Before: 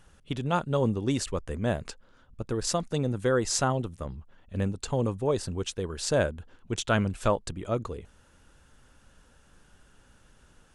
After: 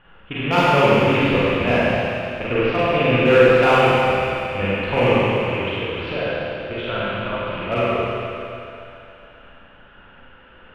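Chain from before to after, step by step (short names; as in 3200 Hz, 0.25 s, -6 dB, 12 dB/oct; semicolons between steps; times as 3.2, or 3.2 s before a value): rattling part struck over -34 dBFS, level -26 dBFS; elliptic low-pass 3000 Hz, stop band 60 dB; low shelf 310 Hz -8.5 dB; 5.13–7.66 compressor 4:1, threshold -39 dBFS, peak gain reduction 14.5 dB; tremolo 1.6 Hz, depth 33%; overloaded stage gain 24 dB; thinning echo 0.138 s, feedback 75%, high-pass 280 Hz, level -11 dB; Schroeder reverb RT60 2.5 s, combs from 33 ms, DRR -9 dB; gain +8.5 dB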